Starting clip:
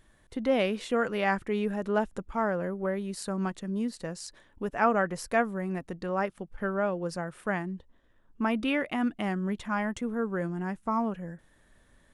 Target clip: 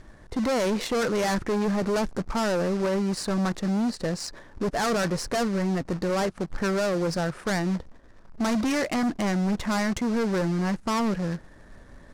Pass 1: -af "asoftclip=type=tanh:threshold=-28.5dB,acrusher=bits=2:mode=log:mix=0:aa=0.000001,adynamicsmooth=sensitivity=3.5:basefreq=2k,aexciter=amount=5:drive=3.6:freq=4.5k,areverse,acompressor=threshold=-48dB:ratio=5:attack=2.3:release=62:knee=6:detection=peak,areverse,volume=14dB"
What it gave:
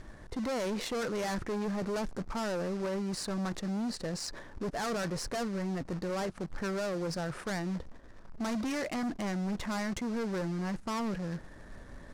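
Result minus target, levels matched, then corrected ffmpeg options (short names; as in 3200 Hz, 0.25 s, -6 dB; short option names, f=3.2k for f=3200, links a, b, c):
compressor: peak gain reduction +9 dB
-af "asoftclip=type=tanh:threshold=-28.5dB,acrusher=bits=2:mode=log:mix=0:aa=0.000001,adynamicsmooth=sensitivity=3.5:basefreq=2k,aexciter=amount=5:drive=3.6:freq=4.5k,areverse,acompressor=threshold=-37dB:ratio=5:attack=2.3:release=62:knee=6:detection=peak,areverse,volume=14dB"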